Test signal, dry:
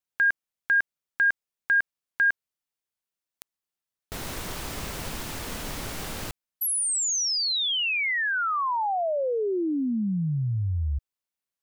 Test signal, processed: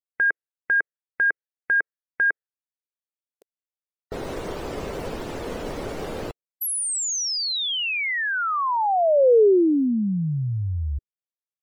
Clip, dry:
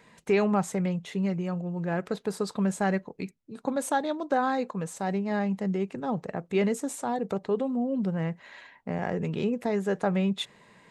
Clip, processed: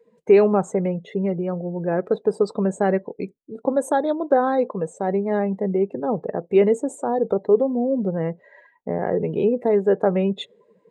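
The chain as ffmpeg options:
ffmpeg -i in.wav -af "equalizer=frequency=450:width=1:gain=12,afftdn=noise_reduction=21:noise_floor=-41" out.wav

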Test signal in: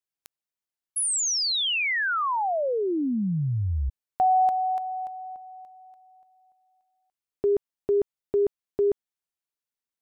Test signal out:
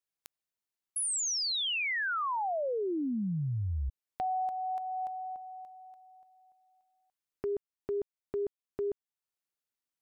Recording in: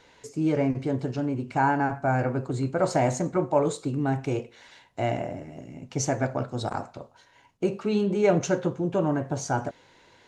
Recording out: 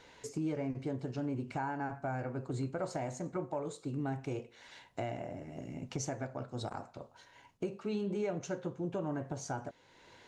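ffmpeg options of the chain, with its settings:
ffmpeg -i in.wav -af "acompressor=threshold=-28dB:ratio=10:attack=1.6:release=704:knee=1:detection=rms,volume=-1.5dB" out.wav

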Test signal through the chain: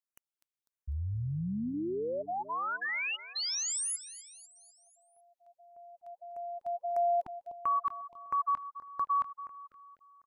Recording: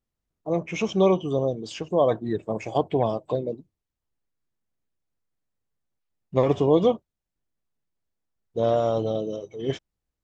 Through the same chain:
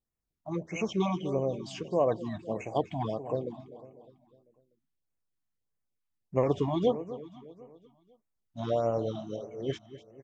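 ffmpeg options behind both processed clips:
ffmpeg -i in.wav -filter_complex "[0:a]asplit=2[link_01][link_02];[link_02]aecho=0:1:249|498|747|996|1245:0.188|0.0979|0.0509|0.0265|0.0138[link_03];[link_01][link_03]amix=inputs=2:normalize=0,afftfilt=real='re*(1-between(b*sr/1024,410*pow(4300/410,0.5+0.5*sin(2*PI*1.6*pts/sr))/1.41,410*pow(4300/410,0.5+0.5*sin(2*PI*1.6*pts/sr))*1.41))':imag='im*(1-between(b*sr/1024,410*pow(4300/410,0.5+0.5*sin(2*PI*1.6*pts/sr))/1.41,410*pow(4300/410,0.5+0.5*sin(2*PI*1.6*pts/sr))*1.41))':win_size=1024:overlap=0.75,volume=-5.5dB" out.wav

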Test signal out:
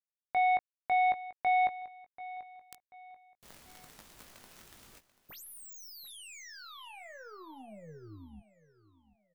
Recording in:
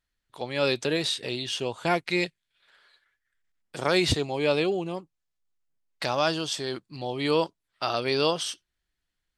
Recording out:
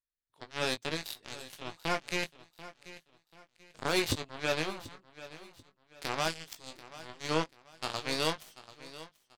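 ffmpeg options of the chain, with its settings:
ffmpeg -i in.wav -filter_complex "[0:a]aeval=exprs='0.335*(cos(1*acos(clip(val(0)/0.335,-1,1)))-cos(1*PI/2))+0.0133*(cos(5*acos(clip(val(0)/0.335,-1,1)))-cos(5*PI/2))+0.00531*(cos(6*acos(clip(val(0)/0.335,-1,1)))-cos(6*PI/2))+0.0668*(cos(7*acos(clip(val(0)/0.335,-1,1)))-cos(7*PI/2))+0.00422*(cos(8*acos(clip(val(0)/0.335,-1,1)))-cos(8*PI/2))':channel_layout=same,asplit=2[link_01][link_02];[link_02]adelay=19,volume=-8dB[link_03];[link_01][link_03]amix=inputs=2:normalize=0,aecho=1:1:737|1474|2211:0.15|0.0509|0.0173,volume=-6dB" out.wav

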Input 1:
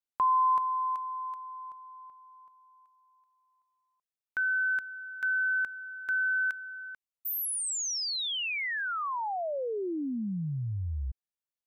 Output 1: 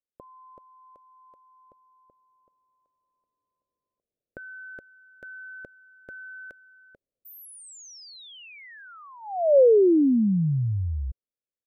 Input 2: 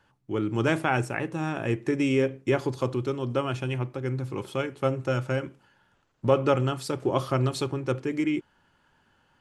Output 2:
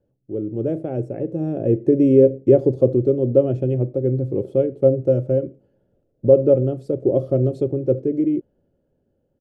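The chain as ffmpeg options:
ffmpeg -i in.wav -af "firequalizer=gain_entry='entry(180,0);entry(550,6);entry(940,-26)':delay=0.05:min_phase=1,dynaudnorm=framelen=160:gausssize=17:maxgain=13.5dB,volume=-1dB" out.wav

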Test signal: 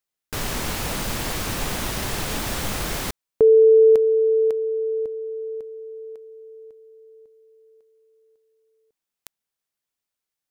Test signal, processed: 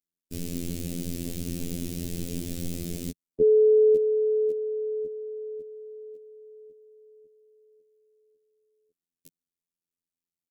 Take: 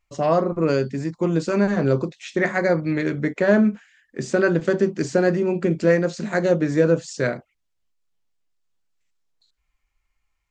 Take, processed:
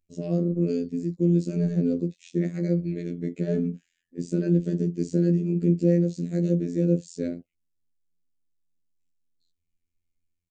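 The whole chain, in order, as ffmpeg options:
ffmpeg -i in.wav -af "firequalizer=gain_entry='entry(130,0);entry(200,8);entry(420,-1);entry(910,-29);entry(2500,-11);entry(7500,-4)':delay=0.05:min_phase=1,afftfilt=real='hypot(re,im)*cos(PI*b)':imag='0':win_size=2048:overlap=0.75,volume=-1.5dB" out.wav

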